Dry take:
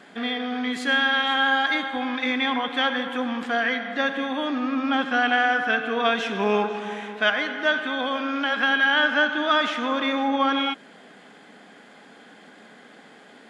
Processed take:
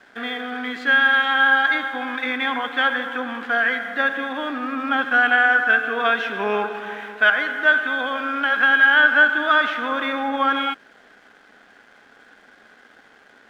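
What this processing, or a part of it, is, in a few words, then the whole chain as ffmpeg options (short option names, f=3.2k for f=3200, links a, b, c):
pocket radio on a weak battery: -af "highpass=260,lowpass=3.9k,aeval=exprs='sgn(val(0))*max(abs(val(0))-0.002,0)':c=same,equalizer=f=1.5k:t=o:w=0.49:g=8.5"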